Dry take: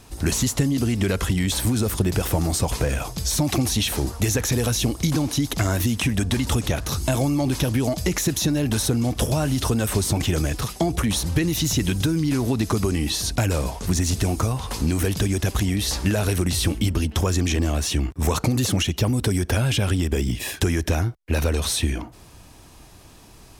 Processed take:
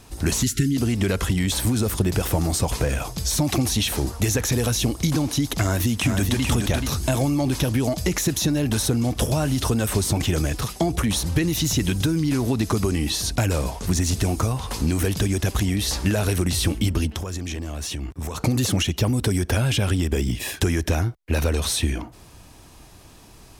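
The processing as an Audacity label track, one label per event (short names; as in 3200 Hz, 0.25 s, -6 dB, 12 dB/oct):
0.430000	0.760000	spectral delete 420–1300 Hz
5.620000	6.470000	echo throw 0.43 s, feedback 20%, level -5 dB
17.110000	18.390000	compressor 5:1, threshold -26 dBFS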